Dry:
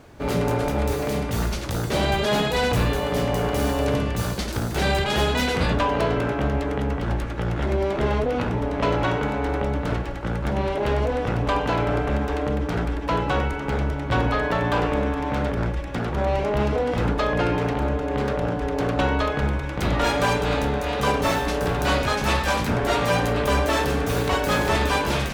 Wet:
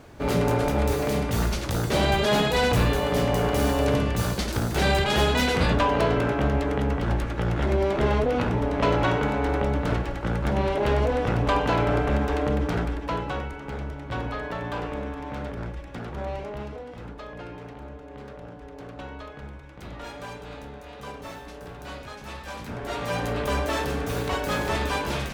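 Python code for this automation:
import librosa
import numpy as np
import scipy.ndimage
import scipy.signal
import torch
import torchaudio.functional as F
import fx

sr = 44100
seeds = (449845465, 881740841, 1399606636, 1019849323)

y = fx.gain(x, sr, db=fx.line((12.66, 0.0), (13.47, -9.0), (16.28, -9.0), (16.93, -17.0), (22.32, -17.0), (23.31, -5.0)))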